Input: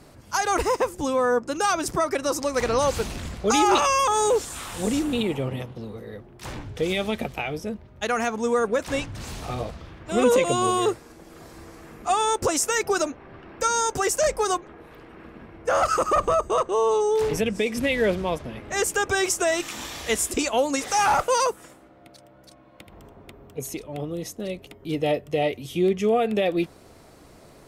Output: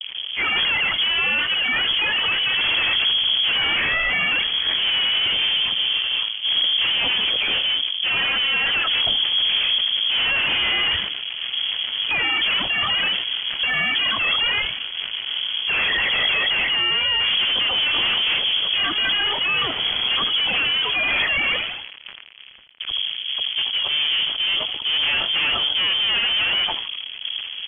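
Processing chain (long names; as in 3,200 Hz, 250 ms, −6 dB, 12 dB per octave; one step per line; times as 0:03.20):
pitch glide at a constant tempo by +4 semitones ending unshifted
spectral tilt −3.5 dB per octave
all-pass dispersion highs, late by 129 ms, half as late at 1,500 Hz
fuzz pedal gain 34 dB, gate −42 dBFS
echo with shifted repeats 80 ms, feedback 50%, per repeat −110 Hz, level −13 dB
voice inversion scrambler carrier 3,300 Hz
level that may fall only so fast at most 47 dB per second
level −6.5 dB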